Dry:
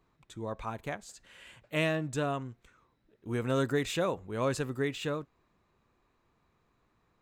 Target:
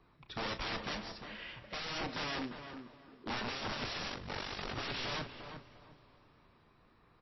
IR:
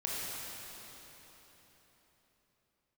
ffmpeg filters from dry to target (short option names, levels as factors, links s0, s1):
-filter_complex "[0:a]acrossover=split=500|1700[s0][s1][s2];[s1]crystalizer=i=3:c=0[s3];[s0][s3][s2]amix=inputs=3:normalize=0,asoftclip=type=tanh:threshold=0.0299,asettb=1/sr,asplit=3[s4][s5][s6];[s4]atrim=end=0.804[s7];[s5]atrim=start=0.8:end=1.44,asetpts=PTS-STARTPTS,afade=t=in:d=0.004:c=qsin,afade=t=out:st=0.636:d=0.004:c=qsin,acrusher=bits=3:mode=log:mix=0:aa=0.000001[s8];[s6]atrim=start=1.436[s9];[s7][s8]acrossfade=d=0.004:c1=hsin:c2=qsin[s10];[s10][s9]acrossfade=d=0.004:c1=qsin:c2=hsin,asplit=3[s11][s12][s13];[s11]afade=t=out:st=2.02:d=0.02[s14];[s12]highpass=f=210:w=0.5412,highpass=f=210:w=1.3066,equalizer=f=690:t=q:w=4:g=-6,equalizer=f=2200:t=q:w=4:g=-9,equalizer=f=3300:t=q:w=4:g=-8,lowpass=f=5400:w=0.5412,lowpass=f=5400:w=1.3066,afade=t=in:st=2.02:d=0.02,afade=t=out:st=3.47:d=0.02[s15];[s13]afade=t=in:st=3.47:d=0.02[s16];[s14][s15][s16]amix=inputs=3:normalize=0,aeval=exprs='(mod(75*val(0)+1,2)-1)/75':c=same,asplit=2[s17][s18];[s18]adelay=33,volume=0.266[s19];[s17][s19]amix=inputs=2:normalize=0,asplit=2[s20][s21];[s21]adelay=350,lowpass=f=1600:p=1,volume=0.447,asplit=2[s22][s23];[s23]adelay=350,lowpass=f=1600:p=1,volume=0.28,asplit=2[s24][s25];[s25]adelay=350,lowpass=f=1600:p=1,volume=0.28[s26];[s20][s22][s24][s26]amix=inputs=4:normalize=0,asplit=2[s27][s28];[1:a]atrim=start_sample=2205,adelay=42[s29];[s28][s29]afir=irnorm=-1:irlink=0,volume=0.0708[s30];[s27][s30]amix=inputs=2:normalize=0,asplit=3[s31][s32][s33];[s31]afade=t=out:st=4.08:d=0.02[s34];[s32]aeval=exprs='val(0)*sin(2*PI*24*n/s)':c=same,afade=t=in:st=4.08:d=0.02,afade=t=out:st=4.74:d=0.02[s35];[s33]afade=t=in:st=4.74:d=0.02[s36];[s34][s35][s36]amix=inputs=3:normalize=0,volume=1.78" -ar 16000 -c:a libmp3lame -b:a 24k